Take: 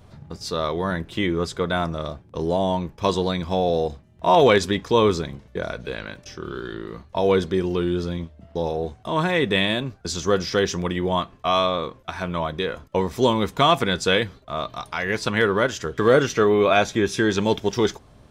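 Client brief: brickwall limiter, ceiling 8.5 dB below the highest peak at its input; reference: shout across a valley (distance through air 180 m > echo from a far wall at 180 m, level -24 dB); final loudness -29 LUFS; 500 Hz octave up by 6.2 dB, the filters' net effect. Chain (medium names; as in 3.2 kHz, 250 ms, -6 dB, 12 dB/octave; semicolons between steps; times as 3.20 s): peaking EQ 500 Hz +8 dB; peak limiter -8.5 dBFS; distance through air 180 m; echo from a far wall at 180 m, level -24 dB; trim -8 dB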